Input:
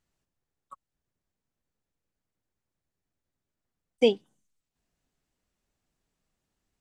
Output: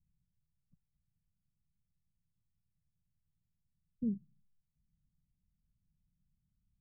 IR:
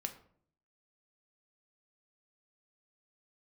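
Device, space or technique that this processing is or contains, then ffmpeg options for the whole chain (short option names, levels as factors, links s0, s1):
the neighbour's flat through the wall: -af "lowpass=f=160:w=0.5412,lowpass=f=160:w=1.3066,equalizer=f=180:t=o:w=0.77:g=5.5,volume=1.68"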